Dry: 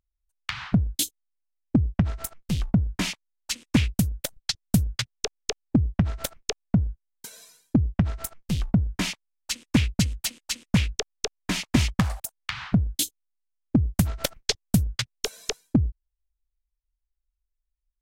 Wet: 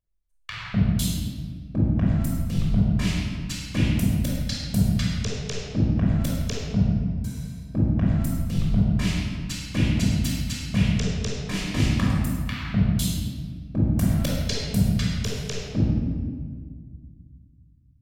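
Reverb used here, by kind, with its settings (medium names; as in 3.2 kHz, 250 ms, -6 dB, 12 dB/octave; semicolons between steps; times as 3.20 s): simulated room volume 2400 m³, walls mixed, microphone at 5.7 m; trim -9.5 dB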